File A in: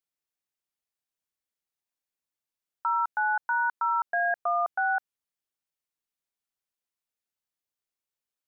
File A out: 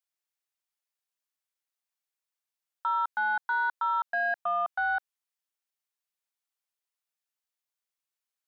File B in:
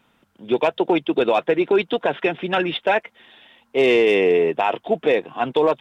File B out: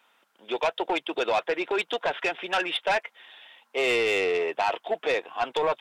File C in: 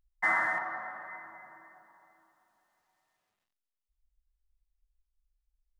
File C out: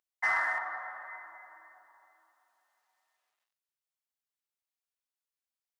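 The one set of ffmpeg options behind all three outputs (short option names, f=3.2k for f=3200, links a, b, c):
-af "highpass=660,asoftclip=type=tanh:threshold=-18dB"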